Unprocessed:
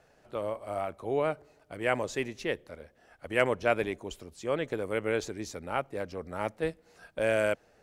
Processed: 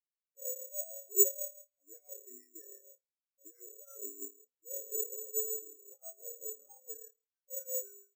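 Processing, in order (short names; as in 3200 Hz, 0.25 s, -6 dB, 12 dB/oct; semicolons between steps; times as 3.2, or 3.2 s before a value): G.711 law mismatch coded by A; steep high-pass 290 Hz 48 dB/oct; comb 7 ms, depth 40%; flutter echo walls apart 4.5 m, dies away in 0.77 s; compressor 10:1, threshold -33 dBFS, peak gain reduction 14 dB; limiter -29.5 dBFS, peak gain reduction 8 dB; transient shaper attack -4 dB, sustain +1 dB; rotary speaker horn 6.3 Hz; speed mistake 25 fps video run at 24 fps; careless resampling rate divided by 6×, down none, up zero stuff; spectral expander 4:1; gain +6 dB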